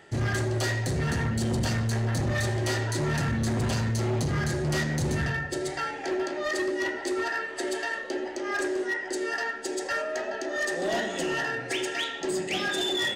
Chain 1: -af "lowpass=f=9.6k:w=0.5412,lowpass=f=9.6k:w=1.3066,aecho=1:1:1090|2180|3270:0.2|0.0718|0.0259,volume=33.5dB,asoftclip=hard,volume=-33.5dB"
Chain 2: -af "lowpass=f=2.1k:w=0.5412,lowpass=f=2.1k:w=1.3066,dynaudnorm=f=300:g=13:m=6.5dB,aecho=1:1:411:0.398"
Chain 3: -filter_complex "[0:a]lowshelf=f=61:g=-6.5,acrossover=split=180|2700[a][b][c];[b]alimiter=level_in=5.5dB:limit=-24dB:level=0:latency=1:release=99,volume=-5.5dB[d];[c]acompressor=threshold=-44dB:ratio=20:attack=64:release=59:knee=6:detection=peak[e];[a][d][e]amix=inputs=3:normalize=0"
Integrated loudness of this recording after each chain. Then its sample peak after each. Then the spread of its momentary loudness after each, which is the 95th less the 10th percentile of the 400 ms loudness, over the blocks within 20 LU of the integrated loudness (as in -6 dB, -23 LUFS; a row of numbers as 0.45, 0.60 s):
-34.5, -23.5, -32.5 LUFS; -33.5, -13.0, -19.0 dBFS; 1, 7, 5 LU